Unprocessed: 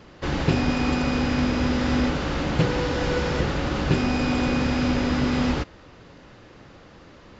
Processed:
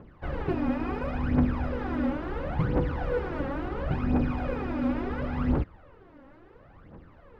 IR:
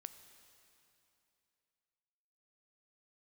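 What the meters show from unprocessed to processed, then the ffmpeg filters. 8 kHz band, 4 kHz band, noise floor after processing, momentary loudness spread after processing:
n/a, -20.0 dB, -53 dBFS, 6 LU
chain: -af "lowpass=1.5k,areverse,acompressor=mode=upward:threshold=-42dB:ratio=2.5,areverse,aphaser=in_gain=1:out_gain=1:delay=3.8:decay=0.69:speed=0.72:type=triangular,volume=-8dB"

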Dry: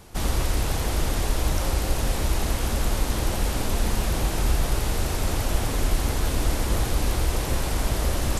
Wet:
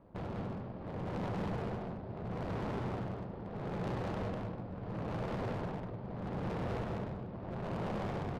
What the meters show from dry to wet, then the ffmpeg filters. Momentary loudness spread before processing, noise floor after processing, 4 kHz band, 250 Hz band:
1 LU, -45 dBFS, -23.5 dB, -7.5 dB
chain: -af "bass=f=250:g=-13,treble=f=4k:g=2,tremolo=f=0.76:d=0.75,aresample=11025,asoftclip=type=tanh:threshold=-23dB,aresample=44100,aeval=exprs='val(0)*sin(2*PI*150*n/s)':c=same,adynamicsmooth=sensitivity=1.5:basefreq=510,asoftclip=type=hard:threshold=-37.5dB,aecho=1:1:99.13|198.3:0.282|0.794,volume=2.5dB" -ar 32000 -c:a ac3 -b:a 320k

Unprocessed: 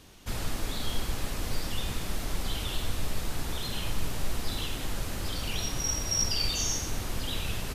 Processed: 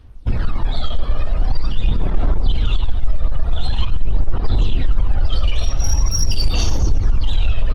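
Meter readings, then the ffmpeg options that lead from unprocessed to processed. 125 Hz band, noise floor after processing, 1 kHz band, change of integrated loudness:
+15.0 dB, -22 dBFS, +6.5 dB, +10.0 dB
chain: -filter_complex "[0:a]afftdn=nr=26:nf=-39,lowpass=8.9k,equalizer=f=7k:t=o:w=0.41:g=-11,asplit=2[a][b];[b]asplit=6[c][d][e][f][g][h];[c]adelay=102,afreqshift=-50,volume=-14dB[i];[d]adelay=204,afreqshift=-100,volume=-18.7dB[j];[e]adelay=306,afreqshift=-150,volume=-23.5dB[k];[f]adelay=408,afreqshift=-200,volume=-28.2dB[l];[g]adelay=510,afreqshift=-250,volume=-32.9dB[m];[h]adelay=612,afreqshift=-300,volume=-37.7dB[n];[i][j][k][l][m][n]amix=inputs=6:normalize=0[o];[a][o]amix=inputs=2:normalize=0,acompressor=threshold=-41dB:ratio=2.5,acrossover=split=200|1400[p][q][r];[q]crystalizer=i=9:c=0[s];[p][s][r]amix=inputs=3:normalize=0,asoftclip=type=tanh:threshold=-35dB,aphaser=in_gain=1:out_gain=1:delay=1.7:decay=0.54:speed=0.45:type=sinusoidal,asubboost=boost=2.5:cutoff=88,alimiter=level_in=24dB:limit=-1dB:release=50:level=0:latency=1,volume=-5.5dB" -ar 48000 -c:a libopus -b:a 24k

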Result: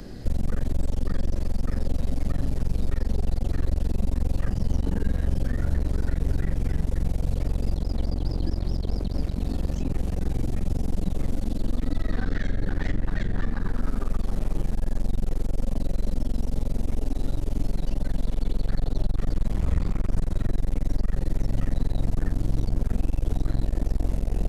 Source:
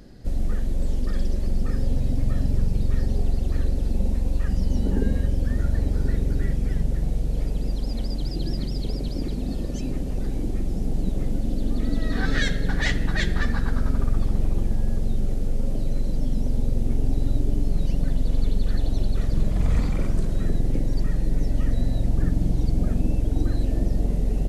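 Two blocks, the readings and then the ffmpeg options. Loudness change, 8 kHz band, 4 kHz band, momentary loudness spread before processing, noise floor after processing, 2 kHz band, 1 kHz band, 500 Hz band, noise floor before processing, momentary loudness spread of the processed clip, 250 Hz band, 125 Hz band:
-3.0 dB, n/a, -7.0 dB, 5 LU, -34 dBFS, -8.5 dB, -1.0 dB, -2.5 dB, -28 dBFS, 3 LU, -3.0 dB, -2.5 dB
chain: -filter_complex "[0:a]acrossover=split=170|690|1500[a][b][c][d];[a]acompressor=threshold=-19dB:ratio=4[e];[b]acompressor=threshold=-40dB:ratio=4[f];[c]acompressor=threshold=-47dB:ratio=4[g];[d]acompressor=threshold=-53dB:ratio=4[h];[e][f][g][h]amix=inputs=4:normalize=0,asplit=2[i][j];[j]alimiter=level_in=2.5dB:limit=-24dB:level=0:latency=1,volume=-2.5dB,volume=2.5dB[k];[i][k]amix=inputs=2:normalize=0,flanger=delay=9.9:depth=8.4:regen=67:speed=1:shape=sinusoidal,aeval=exprs='clip(val(0),-1,0.0119)':c=same,volume=5dB"

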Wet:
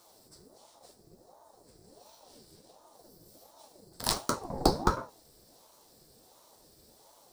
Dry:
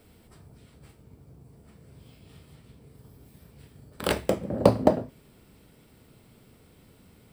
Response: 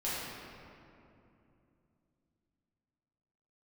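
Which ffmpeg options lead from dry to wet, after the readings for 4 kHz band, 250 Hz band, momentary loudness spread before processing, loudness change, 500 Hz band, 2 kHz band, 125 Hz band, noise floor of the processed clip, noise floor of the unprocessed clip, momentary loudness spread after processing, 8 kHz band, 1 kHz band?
+3.0 dB, -7.5 dB, 12 LU, -5.5 dB, -10.5 dB, -4.5 dB, -7.5 dB, -61 dBFS, -58 dBFS, 10 LU, +6.0 dB, -0.5 dB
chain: -af "highshelf=f=3.7k:t=q:w=3:g=10,flanger=delay=9.3:depth=2.3:regen=-39:speed=0.54:shape=triangular,aeval=exprs='val(0)*sin(2*PI*510*n/s+510*0.55/1.4*sin(2*PI*1.4*n/s))':c=same"

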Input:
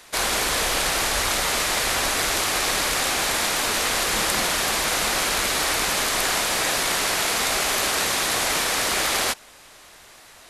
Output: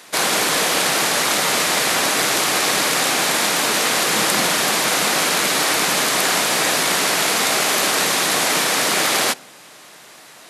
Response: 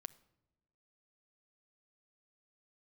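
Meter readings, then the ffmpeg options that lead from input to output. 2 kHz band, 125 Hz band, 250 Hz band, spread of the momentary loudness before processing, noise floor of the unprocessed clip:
+4.5 dB, +3.0 dB, +7.0 dB, 0 LU, -48 dBFS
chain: -filter_complex "[0:a]highpass=f=150:w=0.5412,highpass=f=150:w=1.3066,asplit=2[a][b];[1:a]atrim=start_sample=2205,lowshelf=f=360:g=9.5[c];[b][c]afir=irnorm=-1:irlink=0,volume=1.5dB[d];[a][d]amix=inputs=2:normalize=0"

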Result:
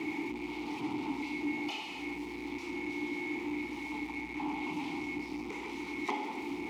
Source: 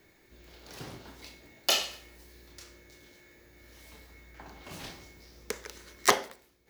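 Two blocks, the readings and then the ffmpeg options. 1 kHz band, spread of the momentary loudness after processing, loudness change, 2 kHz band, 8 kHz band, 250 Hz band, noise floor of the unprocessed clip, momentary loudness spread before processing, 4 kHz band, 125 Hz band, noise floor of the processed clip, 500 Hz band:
-2.5 dB, 4 LU, -6.5 dB, 0.0 dB, -18.5 dB, +13.5 dB, -63 dBFS, 24 LU, -11.5 dB, 0.0 dB, -42 dBFS, -3.0 dB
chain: -filter_complex "[0:a]aeval=exprs='val(0)+0.5*0.119*sgn(val(0))':c=same,asplit=3[a][b][c];[a]bandpass=f=300:t=q:w=8,volume=0dB[d];[b]bandpass=f=870:t=q:w=8,volume=-6dB[e];[c]bandpass=f=2.24k:t=q:w=8,volume=-9dB[f];[d][e][f]amix=inputs=3:normalize=0"

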